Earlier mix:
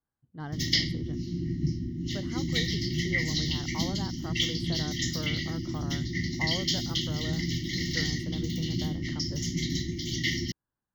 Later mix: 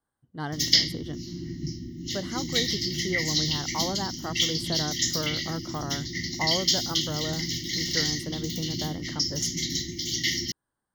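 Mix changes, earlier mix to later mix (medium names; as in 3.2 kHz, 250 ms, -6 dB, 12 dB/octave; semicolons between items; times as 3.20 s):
speech +8.0 dB; master: add tone controls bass -6 dB, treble +10 dB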